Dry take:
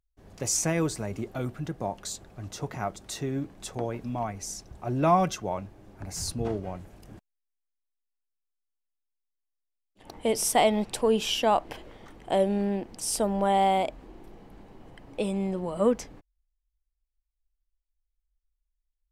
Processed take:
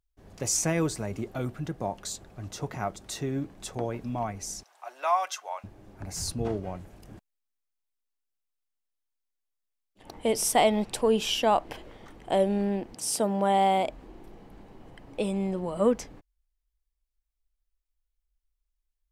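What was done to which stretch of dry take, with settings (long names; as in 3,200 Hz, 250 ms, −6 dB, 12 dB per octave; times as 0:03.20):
0:04.63–0:05.64: high-pass filter 750 Hz 24 dB per octave
0:12.94–0:13.85: high-pass filter 90 Hz 24 dB per octave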